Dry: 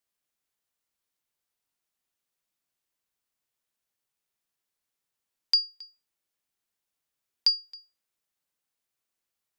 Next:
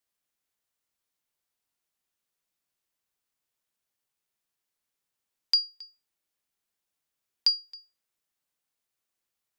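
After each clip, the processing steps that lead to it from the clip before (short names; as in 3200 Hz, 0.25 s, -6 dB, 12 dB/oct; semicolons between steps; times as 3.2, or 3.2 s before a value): dynamic EQ 1400 Hz, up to -4 dB, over -41 dBFS, Q 0.72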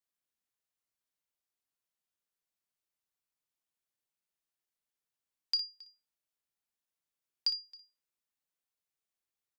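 early reflections 33 ms -15.5 dB, 59 ms -12 dB; gain -8 dB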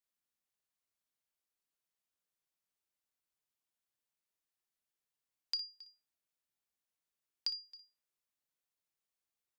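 compressor 2:1, threshold -35 dBFS, peak gain reduction 5 dB; gain -1.5 dB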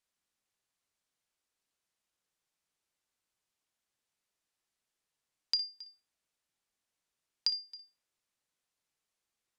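LPF 10000 Hz; gain +6 dB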